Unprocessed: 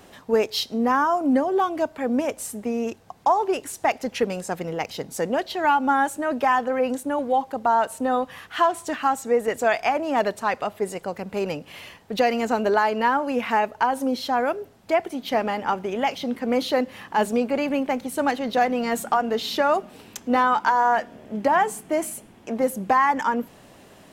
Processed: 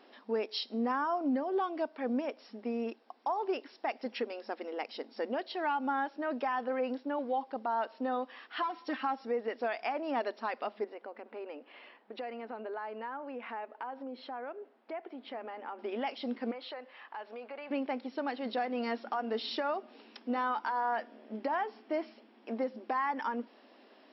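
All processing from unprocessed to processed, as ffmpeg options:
ffmpeg -i in.wav -filter_complex "[0:a]asettb=1/sr,asplit=3[link_01][link_02][link_03];[link_01]atrim=end=8.624[link_04];[link_02]atrim=start=8.62:end=9.25,asetpts=PTS-STARTPTS,afade=type=in:duration=0.004:curve=qsin,afade=type=out:start_time=0.626:duration=0.004:curve=qsin,aeval=exprs='if(lt(val(0),0),0.708*val(0),val(0))':channel_layout=same,aecho=1:1:3.8:0.99,atrim=end_sample=27783[link_05];[link_03]atrim=start=9.246[link_06];[link_04][link_05]acrossfade=duration=0.004:curve1=hsin:curve2=qsin[link_07];[link_07][link_06]acrossfade=duration=0.004:curve1=qsin:curve2=hsin,asettb=1/sr,asplit=3[link_08][link_09][link_10];[link_08]atrim=end=10.844[link_11];[link_09]atrim=start=10.84:end=15.79,asetpts=PTS-STARTPTS,afade=type=in:duration=0.004:curve=qsin,afade=type=out:start_time=4.946:duration=0.004:curve=qsin,highpass=270,lowpass=2300,acompressor=threshold=-32dB:ratio=2.5:attack=3.2:release=140:knee=1:detection=peak[link_12];[link_10]atrim=start=15.786[link_13];[link_11][link_12]acrossfade=duration=0.004:curve1=hsin:curve2=qsin[link_14];[link_14][link_13]acrossfade=duration=0.004:curve1=qsin:curve2=hsin,asettb=1/sr,asplit=3[link_15][link_16][link_17];[link_15]atrim=end=16.514[link_18];[link_16]atrim=start=16.51:end=17.71,asetpts=PTS-STARTPTS,afade=type=in:duration=0.004:curve=qsin,afade=type=out:start_time=1.196:duration=0.004:curve=qsin,highpass=650,lowpass=2900,acompressor=threshold=-31dB:ratio=4:attack=3.2:release=140:knee=1:detection=peak[link_19];[link_17]atrim=start=17.706[link_20];[link_18][link_19]acrossfade=duration=0.004:curve1=hsin:curve2=qsin[link_21];[link_21][link_20]acrossfade=duration=0.004:curve1=qsin:curve2=hsin,alimiter=limit=-15dB:level=0:latency=1:release=182,afftfilt=real='re*between(b*sr/4096,210,5600)':imag='im*between(b*sr/4096,210,5600)':win_size=4096:overlap=0.75,volume=-9dB" out.wav

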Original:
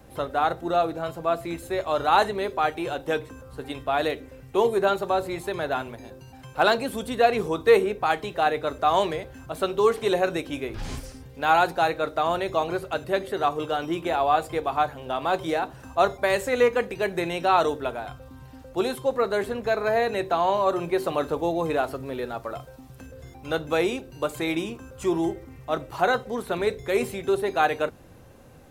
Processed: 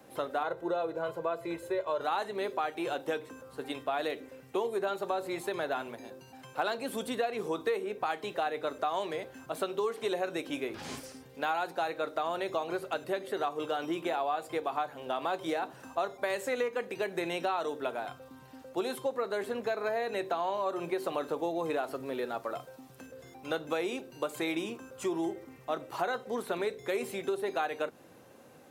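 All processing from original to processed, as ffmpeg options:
ffmpeg -i in.wav -filter_complex "[0:a]asettb=1/sr,asplit=3[link_01][link_02][link_03];[link_01]atrim=end=0.434[link_04];[link_02]atrim=start=0.43:end=2.01,asetpts=PTS-STARTPTS,afade=type=in:duration=0.004:curve=qsin,afade=type=out:start_time=1.576:duration=0.004:curve=qsin,highshelf=frequency=2800:gain=-10,aecho=1:1:2:0.74,atrim=end_sample=69678[link_05];[link_03]atrim=start=2.006[link_06];[link_04][link_05]acrossfade=duration=0.004:curve1=hsin:curve2=qsin[link_07];[link_07][link_06]acrossfade=duration=0.004:curve1=qsin:curve2=hsin,highpass=220,acompressor=threshold=-26dB:ratio=6,volume=-2.5dB" out.wav

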